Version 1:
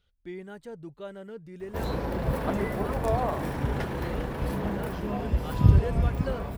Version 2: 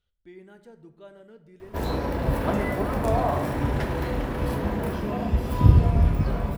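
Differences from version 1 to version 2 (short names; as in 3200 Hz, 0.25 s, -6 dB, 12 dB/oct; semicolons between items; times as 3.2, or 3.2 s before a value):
speech -9.0 dB; reverb: on, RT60 0.85 s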